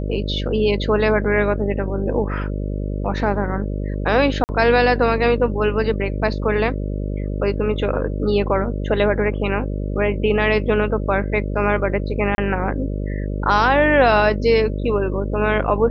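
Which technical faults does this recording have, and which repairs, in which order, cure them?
buzz 50 Hz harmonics 12 -24 dBFS
4.44–4.49 s: dropout 49 ms
12.35–12.38 s: dropout 30 ms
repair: de-hum 50 Hz, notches 12; interpolate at 4.44 s, 49 ms; interpolate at 12.35 s, 30 ms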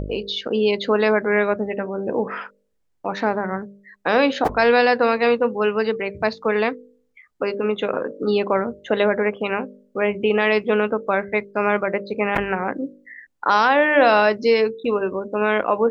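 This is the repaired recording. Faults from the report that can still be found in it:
nothing left

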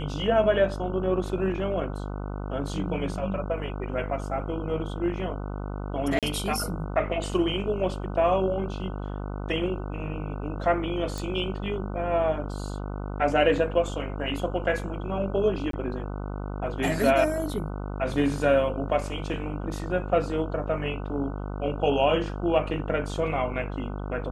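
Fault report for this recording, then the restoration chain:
buzz 50 Hz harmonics 30 -33 dBFS
6.19–6.23 s: dropout 37 ms
11.18 s: pop
15.71–15.73 s: dropout 23 ms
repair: de-click; de-hum 50 Hz, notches 30; interpolate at 6.19 s, 37 ms; interpolate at 15.71 s, 23 ms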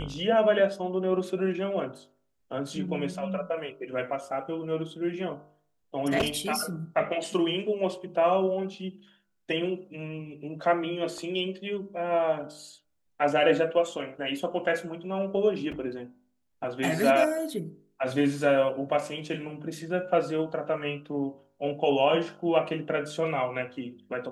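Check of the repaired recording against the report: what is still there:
nothing left

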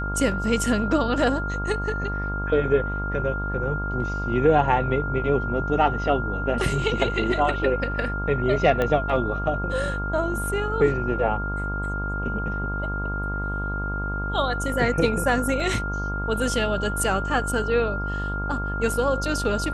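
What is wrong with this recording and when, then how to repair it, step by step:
buzz 50 Hz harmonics 26 -29 dBFS
whine 1.4 kHz -29 dBFS
8.82 s: pop -12 dBFS
15.60 s: dropout 2.7 ms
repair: de-click; band-stop 1.4 kHz, Q 30; de-hum 50 Hz, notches 26; interpolate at 15.60 s, 2.7 ms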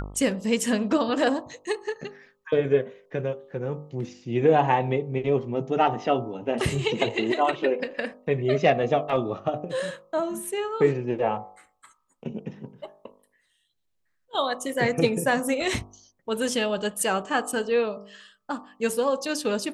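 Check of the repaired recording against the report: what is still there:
8.82 s: pop

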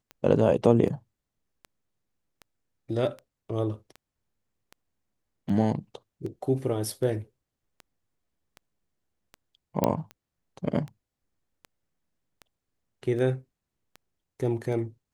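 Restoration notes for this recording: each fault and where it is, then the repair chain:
tick 78 rpm -27 dBFS
9.84 s: pop -10 dBFS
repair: de-click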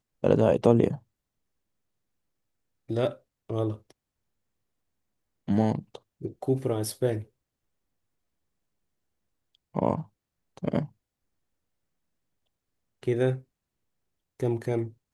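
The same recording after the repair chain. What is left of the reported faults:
nothing left

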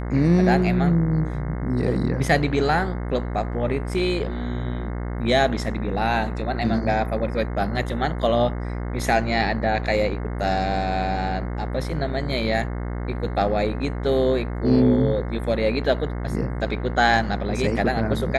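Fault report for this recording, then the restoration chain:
buzz 60 Hz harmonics 36 -28 dBFS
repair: de-hum 60 Hz, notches 36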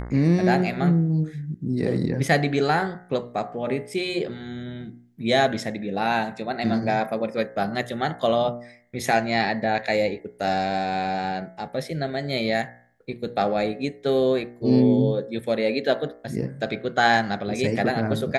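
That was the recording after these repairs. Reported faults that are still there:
nothing left

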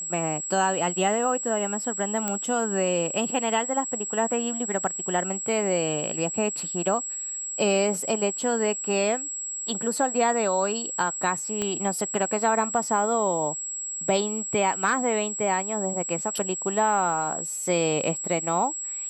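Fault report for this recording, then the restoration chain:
whine 7.7 kHz -30 dBFS
2.28 s: pop -11 dBFS
11.62 s: pop -14 dBFS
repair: de-click; band-stop 7.7 kHz, Q 30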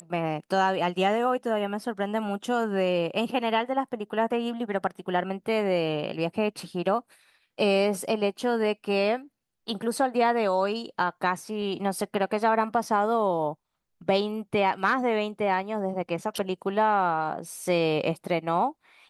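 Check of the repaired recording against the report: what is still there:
11.62 s: pop

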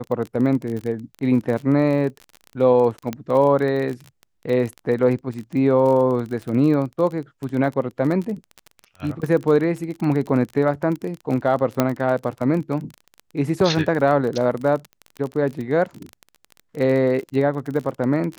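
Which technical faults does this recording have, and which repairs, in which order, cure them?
crackle 30 per s -26 dBFS
3.13 s: pop -13 dBFS
11.80 s: pop -4 dBFS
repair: de-click

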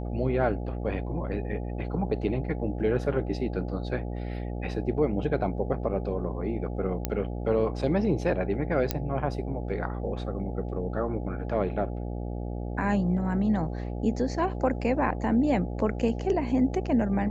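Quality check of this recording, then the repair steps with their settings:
buzz 60 Hz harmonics 14 -33 dBFS
7.05 s: pop -11 dBFS
8.91 s: pop -10 dBFS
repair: de-click; de-hum 60 Hz, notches 14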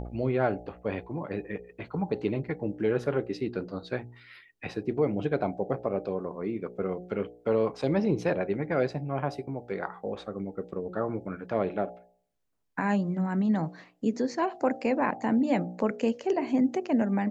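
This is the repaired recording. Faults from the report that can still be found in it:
nothing left

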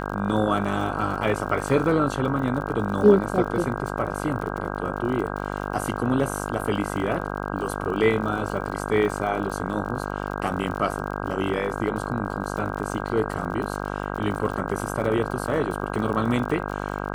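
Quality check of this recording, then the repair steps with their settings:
buzz 50 Hz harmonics 32 -30 dBFS
crackle 44 per s -32 dBFS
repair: de-click; de-hum 50 Hz, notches 32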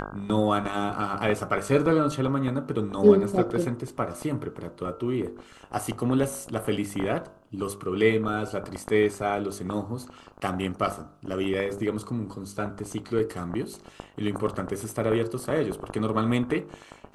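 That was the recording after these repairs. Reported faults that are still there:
nothing left

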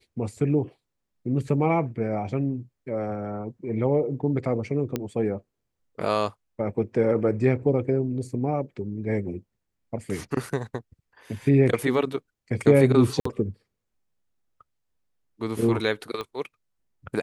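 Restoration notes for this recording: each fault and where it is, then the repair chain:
4.96 s: pop -13 dBFS
13.20–13.25 s: dropout 54 ms
16.21 s: pop -19 dBFS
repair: de-click; interpolate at 13.20 s, 54 ms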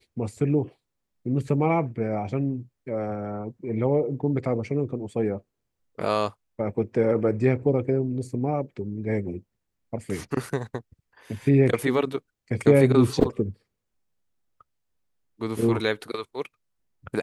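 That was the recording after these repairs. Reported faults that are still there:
16.21 s: pop

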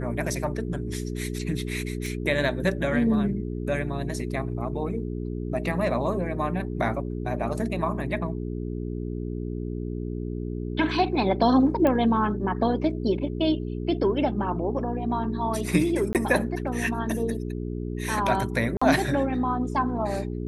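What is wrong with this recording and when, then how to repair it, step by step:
hum 60 Hz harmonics 7 -31 dBFS
2.06 s: pop
11.87 s: pop -13 dBFS
16.13–16.15 s: dropout 18 ms
18.77–18.82 s: dropout 45 ms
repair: de-click; de-hum 60 Hz, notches 7; interpolate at 16.13 s, 18 ms; interpolate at 18.77 s, 45 ms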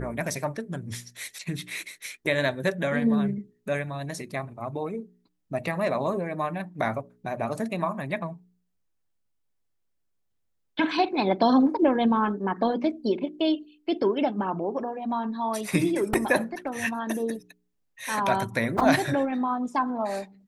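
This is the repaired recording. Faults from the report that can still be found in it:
nothing left

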